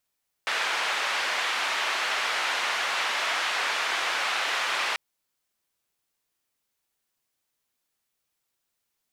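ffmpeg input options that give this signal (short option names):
-f lavfi -i "anoisesrc=c=white:d=4.49:r=44100:seed=1,highpass=f=820,lowpass=f=2500,volume=-12dB"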